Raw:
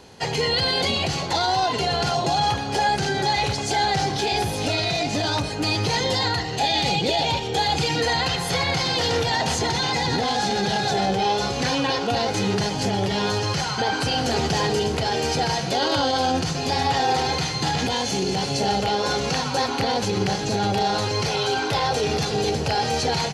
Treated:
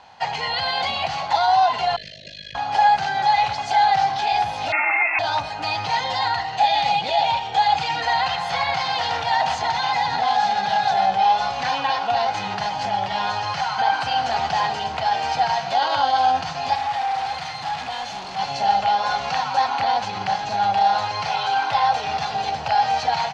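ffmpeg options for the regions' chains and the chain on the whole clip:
ffmpeg -i in.wav -filter_complex "[0:a]asettb=1/sr,asplit=3[link_01][link_02][link_03];[link_01]atrim=end=1.964[link_04];[link_02]atrim=start=1.96:end=2.55,asetpts=PTS-STARTPTS,afade=type=in:duration=0.004:curve=qsin,afade=type=out:start_time=0.586:duration=0.004:curve=qsin,tremolo=f=51:d=0.947,acrossover=split=110|940|6200[link_05][link_06][link_07][link_08];[link_05]acompressor=threshold=-43dB:ratio=3[link_09];[link_06]acompressor=threshold=-31dB:ratio=3[link_10];[link_07]acompressor=threshold=-31dB:ratio=3[link_11];[link_08]acompressor=threshold=-55dB:ratio=3[link_12];[link_09][link_10][link_11][link_12]amix=inputs=4:normalize=0,asuperstop=centerf=1000:order=20:qfactor=0.95[link_13];[link_03]atrim=start=2.546[link_14];[link_04][link_13]acrossfade=duration=0.004:curve1=hsin:curve2=qsin[link_15];[link_15][link_14]acrossfade=duration=0.004:curve1=qsin:curve2=hsin,asettb=1/sr,asplit=3[link_16][link_17][link_18];[link_16]atrim=end=4.724[link_19];[link_17]atrim=start=4.72:end=5.19,asetpts=PTS-STARTPTS,afade=type=in:duration=0.004:curve=qsin,afade=type=out:start_time=0.466:duration=0.004:curve=qsin,highpass=45,equalizer=frequency=1200:width_type=o:width=2.2:gain=9.5,lowpass=frequency=2400:width_type=q:width=0.5098,lowpass=frequency=2400:width_type=q:width=0.6013,lowpass=frequency=2400:width_type=q:width=0.9,lowpass=frequency=2400:width_type=q:width=2.563,afreqshift=-2800[link_20];[link_18]atrim=start=5.186[link_21];[link_19][link_20]acrossfade=duration=0.004:curve1=hsin:curve2=qsin[link_22];[link_22][link_21]acrossfade=duration=0.004:curve1=qsin:curve2=hsin,asettb=1/sr,asplit=3[link_23][link_24][link_25];[link_23]atrim=end=16.754[link_26];[link_24]atrim=start=16.75:end=18.39,asetpts=PTS-STARTPTS,afade=type=in:duration=0.004:curve=qsin,afade=type=out:start_time=1.636:duration=0.004:curve=qsin,bandreject=frequency=1000:width=6.3,asoftclip=type=hard:threshold=-26.5dB[link_27];[link_25]atrim=start=18.386[link_28];[link_26][link_27]acrossfade=duration=0.004:curve1=hsin:curve2=qsin[link_29];[link_29][link_28]acrossfade=duration=0.004:curve1=qsin:curve2=hsin,lowpass=3800,lowshelf=frequency=560:width_type=q:width=3:gain=-10.5" out.wav

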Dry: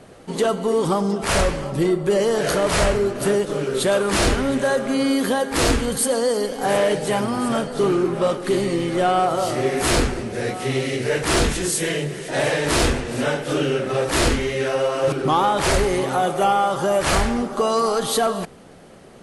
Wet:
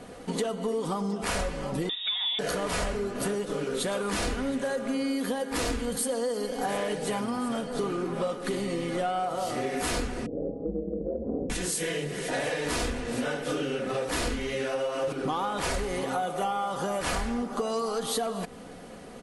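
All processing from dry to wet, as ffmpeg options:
ffmpeg -i in.wav -filter_complex "[0:a]asettb=1/sr,asplit=3[link_01][link_02][link_03];[link_01]atrim=end=1.894[link_04];[link_02]atrim=start=1.89:end=2.39,asetpts=PTS-STARTPTS,afade=type=in:duration=0.004:curve=qsin,afade=type=out:start_time=0.496:duration=0.004:curve=qsin,acrossover=split=130|400[link_05][link_06][link_07];[link_05]acompressor=threshold=-51dB:ratio=4[link_08];[link_06]acompressor=threshold=-28dB:ratio=4[link_09];[link_07]acompressor=threshold=-21dB:ratio=4[link_10];[link_08][link_09][link_10]amix=inputs=3:normalize=0,lowpass=frequency=3300:width_type=q:width=0.5098,lowpass=frequency=3300:width_type=q:width=0.6013,lowpass=frequency=3300:width_type=q:width=0.9,lowpass=frequency=3300:width_type=q:width=2.563,afreqshift=-3900[link_11];[link_03]atrim=start=2.386[link_12];[link_04][link_11]acrossfade=duration=0.004:curve1=hsin:curve2=qsin[link_13];[link_13][link_12]acrossfade=duration=0.004:curve1=qsin:curve2=hsin,asettb=1/sr,asplit=3[link_14][link_15][link_16];[link_14]atrim=end=10.264[link_17];[link_15]atrim=start=10.26:end=11.5,asetpts=PTS-STARTPTS,afade=type=in:duration=0.004:curve=qsin,afade=type=out:start_time=1.236:duration=0.004:curve=qsin,asuperpass=centerf=270:order=8:qfactor=0.66,aeval=exprs='val(0)*sin(2*PI*78*n/s)':channel_layout=same[link_18];[link_16]atrim=start=11.496[link_19];[link_17][link_18]acrossfade=duration=0.004:curve1=hsin:curve2=qsin[link_20];[link_20][link_19]acrossfade=duration=0.004:curve1=qsin:curve2=hsin,aecho=1:1:4.1:0.43,acompressor=threshold=-28dB:ratio=5" out.wav

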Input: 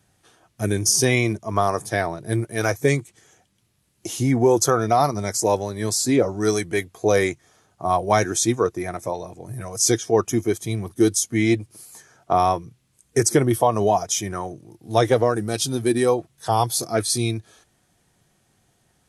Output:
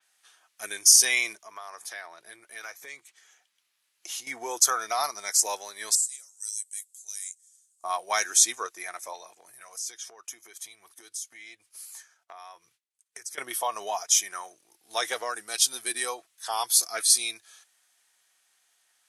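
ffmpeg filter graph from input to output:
ffmpeg -i in.wav -filter_complex "[0:a]asettb=1/sr,asplit=3[link_01][link_02][link_03];[link_01]atrim=end=1.354[link_04];[link_02]atrim=start=1.35:end=4.27,asetpts=PTS-STARTPTS,afade=type=in:duration=0.004:curve=qsin,afade=type=out:start_time=2.916:duration=0.004:curve=qsin,equalizer=frequency=9000:width=0.88:gain=-6,acompressor=threshold=-29dB:ratio=4:attack=3.2:release=140:knee=1:detection=peak[link_05];[link_03]atrim=start=4.266[link_06];[link_04][link_05]acrossfade=duration=0.004:curve1=hsin:curve2=qsin[link_07];[link_07][link_06]acrossfade=duration=0.004:curve1=qsin:curve2=hsin,asettb=1/sr,asplit=3[link_08][link_09][link_10];[link_08]atrim=end=5.954[link_11];[link_09]atrim=start=5.95:end=7.84,asetpts=PTS-STARTPTS,afade=type=in:duration=0.004:curve=qsin,afade=type=out:start_time=1.886:duration=0.004:curve=qsin,bandpass=frequency=8000:width_type=q:width=5.4,aemphasis=mode=production:type=75fm,acompressor=threshold=-32dB:ratio=2.5:attack=3.2:release=140:knee=1:detection=peak[link_12];[link_10]atrim=start=7.836[link_13];[link_11][link_12]acrossfade=duration=0.004:curve1=hsin:curve2=qsin[link_14];[link_14][link_13]acrossfade=duration=0.004:curve1=qsin:curve2=hsin,asettb=1/sr,asplit=3[link_15][link_16][link_17];[link_15]atrim=end=9.354[link_18];[link_16]atrim=start=9.35:end=13.38,asetpts=PTS-STARTPTS,afade=type=in:duration=0.004:curve=qsin,afade=type=out:start_time=4.026:duration=0.004:curve=qsin,asubboost=boost=5.5:cutoff=93,acompressor=threshold=-33dB:ratio=6:attack=3.2:release=140:knee=1:detection=peak,agate=range=-33dB:threshold=-49dB:ratio=3:release=100:detection=peak[link_19];[link_17]atrim=start=13.376[link_20];[link_18][link_19]acrossfade=duration=0.004:curve1=hsin:curve2=qsin[link_21];[link_21][link_20]acrossfade=duration=0.004:curve1=qsin:curve2=hsin,highpass=1400,adynamicequalizer=threshold=0.0178:dfrequency=4900:dqfactor=0.7:tfrequency=4900:tqfactor=0.7:attack=5:release=100:ratio=0.375:range=2.5:mode=boostabove:tftype=highshelf" out.wav

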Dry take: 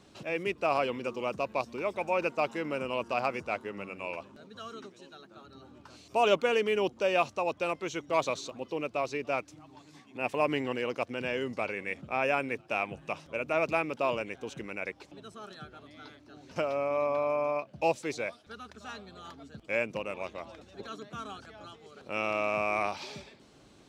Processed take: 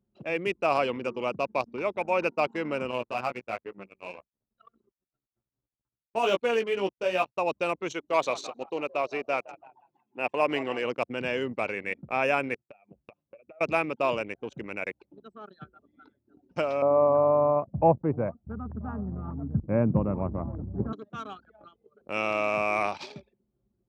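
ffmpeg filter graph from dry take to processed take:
ffmpeg -i in.wav -filter_complex "[0:a]asettb=1/sr,asplit=3[link_01][link_02][link_03];[link_01]atrim=end=2.914[link_04];[link_02]atrim=start=2.91:end=7.38,asetpts=PTS-STARTPTS,afade=type=in:duration=0.004:curve=qsin,afade=type=out:start_time=4.466:duration=0.004:curve=qsin,flanger=delay=15.5:depth=2.3:speed=2.3,aeval=exprs='sgn(val(0))*max(abs(val(0))-0.00299,0)':channel_layout=same[link_05];[link_03]atrim=start=7.376[link_06];[link_04][link_05]acrossfade=duration=0.004:curve1=hsin:curve2=qsin[link_07];[link_07][link_06]acrossfade=duration=0.004:curve1=qsin:curve2=hsin,asettb=1/sr,asplit=3[link_08][link_09][link_10];[link_08]atrim=end=7.924[link_11];[link_09]atrim=start=7.92:end=10.85,asetpts=PTS-STARTPTS,afade=type=in:duration=0.004:curve=qsin,afade=type=out:start_time=2.926:duration=0.004:curve=qsin,bass=frequency=250:gain=-8,treble=frequency=4000:gain=-1,asplit=8[link_12][link_13][link_14][link_15][link_16][link_17][link_18][link_19];[link_13]adelay=165,afreqshift=58,volume=-16dB[link_20];[link_14]adelay=330,afreqshift=116,volume=-19.7dB[link_21];[link_15]adelay=495,afreqshift=174,volume=-23.5dB[link_22];[link_16]adelay=660,afreqshift=232,volume=-27.2dB[link_23];[link_17]adelay=825,afreqshift=290,volume=-31dB[link_24];[link_18]adelay=990,afreqshift=348,volume=-34.7dB[link_25];[link_19]adelay=1155,afreqshift=406,volume=-38.5dB[link_26];[link_12][link_20][link_21][link_22][link_23][link_24][link_25][link_26]amix=inputs=8:normalize=0,atrim=end_sample=129213[link_27];[link_10]atrim=start=10.846[link_28];[link_11][link_27]acrossfade=duration=0.004:curve1=hsin:curve2=qsin[link_29];[link_29][link_28]acrossfade=duration=0.004:curve1=qsin:curve2=hsin,asettb=1/sr,asplit=3[link_30][link_31][link_32];[link_30]atrim=end=12.544[link_33];[link_31]atrim=start=12.54:end=13.61,asetpts=PTS-STARTPTS,afade=type=in:duration=0.004:curve=qsin,afade=type=out:start_time=1.066:duration=0.004:curve=qsin,agate=range=-33dB:threshold=-45dB:ratio=3:release=100:detection=peak,acompressor=threshold=-43dB:ratio=16:attack=3.2:release=140:knee=1:detection=peak[link_34];[link_32]atrim=start=13.606[link_35];[link_33][link_34]acrossfade=duration=0.004:curve1=hsin:curve2=qsin[link_36];[link_36][link_35]acrossfade=duration=0.004:curve1=qsin:curve2=hsin,asettb=1/sr,asplit=3[link_37][link_38][link_39];[link_37]atrim=end=16.824[link_40];[link_38]atrim=start=16.82:end=20.93,asetpts=PTS-STARTPTS,afade=type=in:duration=0.004:curve=qsin,afade=type=out:start_time=4.106:duration=0.004:curve=qsin,lowpass=frequency=1100:width=0.5412,lowpass=frequency=1100:width=1.3066,asubboost=boost=12:cutoff=170,acontrast=47[link_41];[link_39]atrim=start=20.926[link_42];[link_40][link_41]acrossfade=duration=0.004:curve1=hsin:curve2=qsin[link_43];[link_43][link_42]acrossfade=duration=0.004:curve1=qsin:curve2=hsin,anlmdn=0.251,highpass=70,volume=3dB" out.wav

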